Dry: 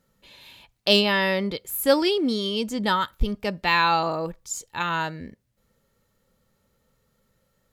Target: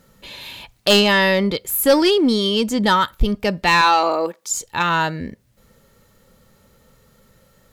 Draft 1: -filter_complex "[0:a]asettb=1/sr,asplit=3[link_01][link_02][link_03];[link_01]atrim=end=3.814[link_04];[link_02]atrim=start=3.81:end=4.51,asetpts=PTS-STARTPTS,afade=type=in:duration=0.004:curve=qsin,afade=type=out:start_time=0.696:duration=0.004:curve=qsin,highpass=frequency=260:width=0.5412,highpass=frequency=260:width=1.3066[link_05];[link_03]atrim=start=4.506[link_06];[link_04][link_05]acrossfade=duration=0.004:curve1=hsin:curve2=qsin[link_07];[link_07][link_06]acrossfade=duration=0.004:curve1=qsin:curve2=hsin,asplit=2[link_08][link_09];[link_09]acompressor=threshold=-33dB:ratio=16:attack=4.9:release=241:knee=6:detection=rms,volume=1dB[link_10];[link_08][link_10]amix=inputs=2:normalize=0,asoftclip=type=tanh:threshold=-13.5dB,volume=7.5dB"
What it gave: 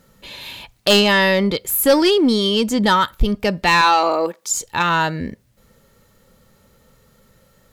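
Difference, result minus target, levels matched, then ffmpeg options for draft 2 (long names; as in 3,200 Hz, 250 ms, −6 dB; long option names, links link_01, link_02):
downward compressor: peak gain reduction −10.5 dB
-filter_complex "[0:a]asettb=1/sr,asplit=3[link_01][link_02][link_03];[link_01]atrim=end=3.814[link_04];[link_02]atrim=start=3.81:end=4.51,asetpts=PTS-STARTPTS,afade=type=in:duration=0.004:curve=qsin,afade=type=out:start_time=0.696:duration=0.004:curve=qsin,highpass=frequency=260:width=0.5412,highpass=frequency=260:width=1.3066[link_05];[link_03]atrim=start=4.506[link_06];[link_04][link_05]acrossfade=duration=0.004:curve1=hsin:curve2=qsin[link_07];[link_07][link_06]acrossfade=duration=0.004:curve1=qsin:curve2=hsin,asplit=2[link_08][link_09];[link_09]acompressor=threshold=-44dB:ratio=16:attack=4.9:release=241:knee=6:detection=rms,volume=1dB[link_10];[link_08][link_10]amix=inputs=2:normalize=0,asoftclip=type=tanh:threshold=-13.5dB,volume=7.5dB"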